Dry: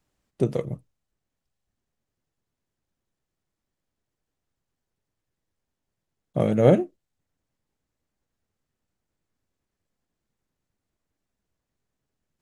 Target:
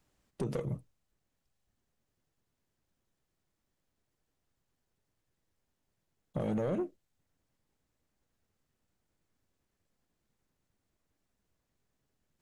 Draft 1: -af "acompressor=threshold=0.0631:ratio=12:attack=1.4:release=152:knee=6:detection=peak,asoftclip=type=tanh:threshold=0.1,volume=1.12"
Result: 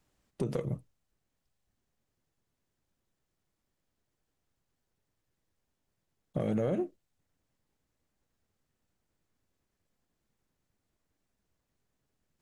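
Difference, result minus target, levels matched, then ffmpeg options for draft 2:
saturation: distortion -10 dB
-af "acompressor=threshold=0.0631:ratio=12:attack=1.4:release=152:knee=6:detection=peak,asoftclip=type=tanh:threshold=0.0422,volume=1.12"

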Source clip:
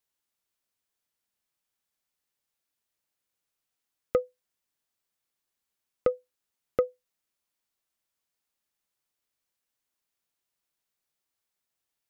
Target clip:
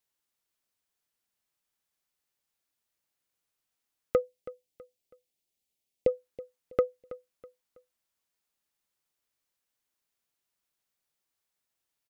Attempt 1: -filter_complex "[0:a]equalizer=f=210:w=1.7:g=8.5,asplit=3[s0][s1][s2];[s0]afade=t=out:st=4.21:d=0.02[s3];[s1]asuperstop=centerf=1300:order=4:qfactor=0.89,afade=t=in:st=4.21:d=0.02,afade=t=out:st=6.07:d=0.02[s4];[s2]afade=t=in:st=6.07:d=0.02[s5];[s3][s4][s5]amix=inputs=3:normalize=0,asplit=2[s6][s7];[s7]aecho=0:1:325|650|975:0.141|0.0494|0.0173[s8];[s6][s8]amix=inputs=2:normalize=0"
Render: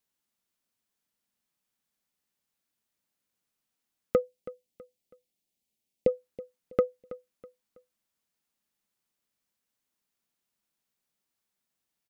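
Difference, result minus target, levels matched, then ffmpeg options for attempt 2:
250 Hz band +4.0 dB
-filter_complex "[0:a]asplit=3[s0][s1][s2];[s0]afade=t=out:st=4.21:d=0.02[s3];[s1]asuperstop=centerf=1300:order=4:qfactor=0.89,afade=t=in:st=4.21:d=0.02,afade=t=out:st=6.07:d=0.02[s4];[s2]afade=t=in:st=6.07:d=0.02[s5];[s3][s4][s5]amix=inputs=3:normalize=0,asplit=2[s6][s7];[s7]aecho=0:1:325|650|975:0.141|0.0494|0.0173[s8];[s6][s8]amix=inputs=2:normalize=0"

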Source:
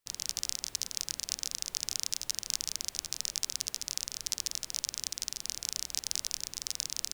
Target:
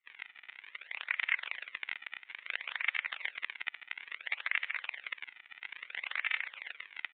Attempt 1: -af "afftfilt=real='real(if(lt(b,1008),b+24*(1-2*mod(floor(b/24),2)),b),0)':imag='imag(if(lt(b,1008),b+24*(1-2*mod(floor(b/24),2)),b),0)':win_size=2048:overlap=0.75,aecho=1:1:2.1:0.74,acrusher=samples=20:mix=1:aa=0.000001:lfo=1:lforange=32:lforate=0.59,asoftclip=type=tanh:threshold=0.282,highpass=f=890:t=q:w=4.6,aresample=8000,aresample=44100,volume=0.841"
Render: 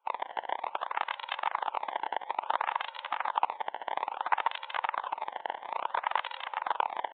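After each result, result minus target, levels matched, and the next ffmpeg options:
1 kHz band +18.0 dB; decimation with a swept rate: distortion -6 dB
-af "afftfilt=real='real(if(lt(b,1008),b+24*(1-2*mod(floor(b/24),2)),b),0)':imag='imag(if(lt(b,1008),b+24*(1-2*mod(floor(b/24),2)),b),0)':win_size=2048:overlap=0.75,aecho=1:1:2.1:0.74,acrusher=samples=20:mix=1:aa=0.000001:lfo=1:lforange=32:lforate=0.59,asoftclip=type=tanh:threshold=0.282,highpass=f=2100:t=q:w=4.6,aresample=8000,aresample=44100,volume=0.841"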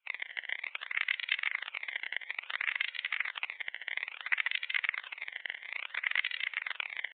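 decimation with a swept rate: distortion -6 dB
-af "afftfilt=real='real(if(lt(b,1008),b+24*(1-2*mod(floor(b/24),2)),b),0)':imag='imag(if(lt(b,1008),b+24*(1-2*mod(floor(b/24),2)),b),0)':win_size=2048:overlap=0.75,aecho=1:1:2.1:0.74,acrusher=samples=46:mix=1:aa=0.000001:lfo=1:lforange=73.6:lforate=0.59,asoftclip=type=tanh:threshold=0.282,highpass=f=2100:t=q:w=4.6,aresample=8000,aresample=44100,volume=0.841"

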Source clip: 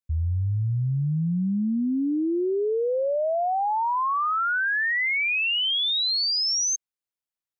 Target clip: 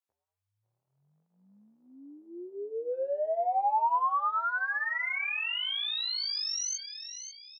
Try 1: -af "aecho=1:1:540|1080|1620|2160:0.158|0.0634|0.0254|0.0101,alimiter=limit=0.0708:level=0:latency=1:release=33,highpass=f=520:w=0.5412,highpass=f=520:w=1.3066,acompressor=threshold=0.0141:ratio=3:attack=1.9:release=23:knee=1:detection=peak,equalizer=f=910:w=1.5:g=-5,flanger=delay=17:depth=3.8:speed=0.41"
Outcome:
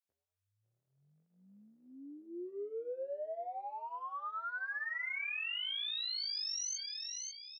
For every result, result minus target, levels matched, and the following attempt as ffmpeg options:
1 kHz band -6.0 dB; compression: peak gain reduction +5.5 dB
-af "aecho=1:1:540|1080|1620|2160:0.158|0.0634|0.0254|0.0101,alimiter=limit=0.0708:level=0:latency=1:release=33,highpass=f=520:w=0.5412,highpass=f=520:w=1.3066,acompressor=threshold=0.0141:ratio=3:attack=1.9:release=23:knee=1:detection=peak,equalizer=f=910:w=1.5:g=7,flanger=delay=17:depth=3.8:speed=0.41"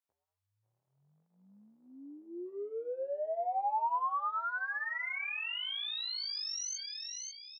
compression: peak gain reduction +5.5 dB
-af "aecho=1:1:540|1080|1620|2160:0.158|0.0634|0.0254|0.0101,alimiter=limit=0.0708:level=0:latency=1:release=33,highpass=f=520:w=0.5412,highpass=f=520:w=1.3066,acompressor=threshold=0.0355:ratio=3:attack=1.9:release=23:knee=1:detection=peak,equalizer=f=910:w=1.5:g=7,flanger=delay=17:depth=3.8:speed=0.41"

